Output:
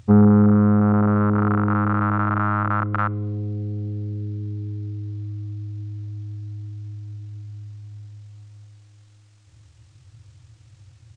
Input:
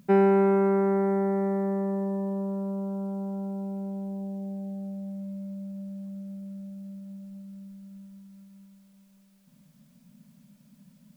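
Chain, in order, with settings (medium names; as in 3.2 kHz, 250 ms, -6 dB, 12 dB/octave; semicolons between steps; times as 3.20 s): rattle on loud lows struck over -32 dBFS, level -16 dBFS; dynamic bell 170 Hz, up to -5 dB, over -46 dBFS, Q 5.3; low-pass that closes with the level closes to 1.2 kHz, closed at -19.5 dBFS; on a send at -23 dB: reverberation RT60 1.3 s, pre-delay 4 ms; on the sum: pitch shift -11 st; trim +7.5 dB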